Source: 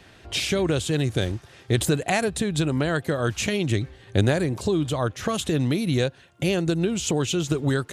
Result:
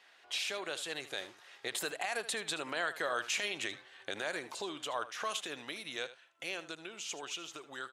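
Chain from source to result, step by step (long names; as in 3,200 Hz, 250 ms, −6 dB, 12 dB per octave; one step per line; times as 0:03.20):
source passing by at 0:03.13, 14 m/s, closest 21 metres
high-pass filter 900 Hz 12 dB per octave
high-shelf EQ 5,500 Hz −7.5 dB
brickwall limiter −23.5 dBFS, peak gain reduction 11.5 dB
on a send: single-tap delay 77 ms −14.5 dB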